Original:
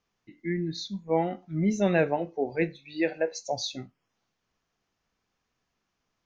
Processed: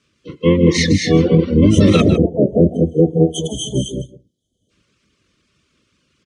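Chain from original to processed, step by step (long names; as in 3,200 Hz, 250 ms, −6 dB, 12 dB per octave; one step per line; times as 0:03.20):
Chebyshev band-stop filter 390–2,200 Hz, order 4
mains-hum notches 60/120/180/240/300/360/420/480 Hz
reverb whose tail is shaped and stops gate 270 ms rising, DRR 3 dB
time-frequency box erased 0:02.01–0:04.71, 1,300–6,000 Hz
pitch-shifted copies added −12 semitones 0 dB, +4 semitones −6 dB, +7 semitones −1 dB
high-frequency loss of the air 68 metres
on a send: single-tap delay 154 ms −11 dB
on the sum: reverb reduction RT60 0.6 s
high-pass filter 73 Hz
boost into a limiter +17.5 dB
level −1 dB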